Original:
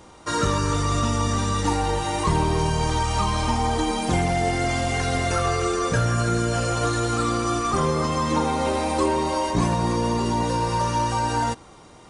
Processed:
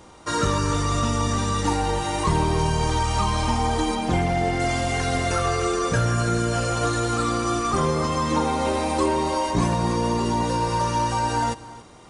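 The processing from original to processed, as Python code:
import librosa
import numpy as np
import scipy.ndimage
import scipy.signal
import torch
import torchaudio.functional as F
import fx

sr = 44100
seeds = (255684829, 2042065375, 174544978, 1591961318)

y = fx.high_shelf(x, sr, hz=6200.0, db=-11.5, at=(3.95, 4.6))
y = y + 10.0 ** (-18.5 / 20.0) * np.pad(y, (int(280 * sr / 1000.0), 0))[:len(y)]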